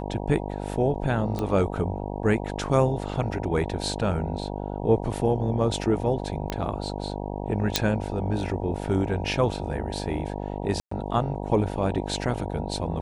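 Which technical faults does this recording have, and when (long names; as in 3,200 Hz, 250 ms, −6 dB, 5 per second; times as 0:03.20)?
mains buzz 50 Hz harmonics 19 −32 dBFS
0:01.39: click −17 dBFS
0:06.50: click −14 dBFS
0:07.76: click −4 dBFS
0:10.80–0:10.91: drop-out 114 ms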